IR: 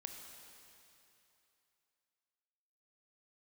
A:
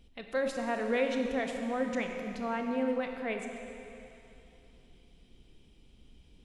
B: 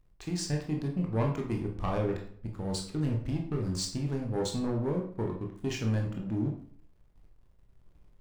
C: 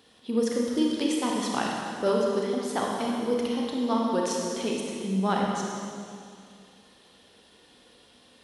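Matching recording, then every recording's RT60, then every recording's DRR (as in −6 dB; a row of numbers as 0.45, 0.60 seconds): A; 2.9, 0.55, 2.2 seconds; 3.5, 0.5, −2.0 decibels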